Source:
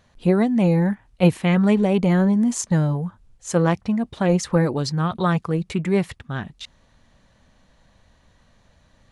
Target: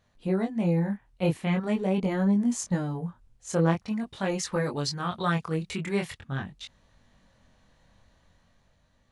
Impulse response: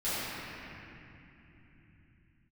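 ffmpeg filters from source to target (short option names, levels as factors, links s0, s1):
-filter_complex "[0:a]asettb=1/sr,asplit=3[s0][s1][s2];[s0]atrim=end=3.804[s3];[s1]atrim=start=3.8:end=6.2,asetpts=PTS-STARTPTS,afade=t=in:d=0.004:c=qsin,afade=t=out:st=2.396:d=0.004:c=qsin,tiltshelf=f=970:g=-4.5[s4];[s2]atrim=start=6.196[s5];[s3][s4]acrossfade=d=0.004:c1=hsin:c2=qsin[s6];[s6][s5]acrossfade=d=0.004:c1=qsin:c2=hsin,dynaudnorm=f=190:g=9:m=1.78,flanger=delay=20:depth=5.2:speed=0.44,volume=0.473"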